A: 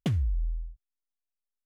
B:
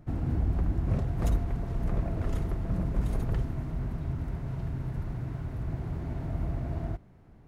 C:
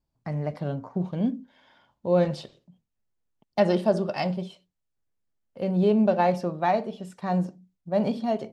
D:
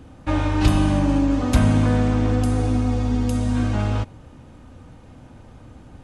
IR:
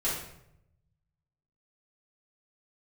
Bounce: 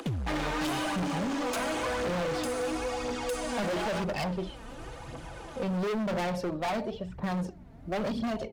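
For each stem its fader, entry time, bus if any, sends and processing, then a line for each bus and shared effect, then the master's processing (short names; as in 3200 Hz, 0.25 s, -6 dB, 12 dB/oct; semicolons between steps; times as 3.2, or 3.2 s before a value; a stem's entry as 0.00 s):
-4.0 dB, 0.00 s, no send, dry
-20.0 dB, 1.50 s, no send, dry
-0.5 dB, 0.00 s, no send, low-pass opened by the level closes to 1000 Hz, open at -22 dBFS
-1.0 dB, 0.00 s, no send, Bessel high-pass 490 Hz, order 8; comb 6 ms, depth 45%; upward compressor, threshold -46 dBFS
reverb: off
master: phaser 0.97 Hz, delay 4.6 ms, feedback 54%; hard clip -28.5 dBFS, distortion -5 dB; three-band squash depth 40%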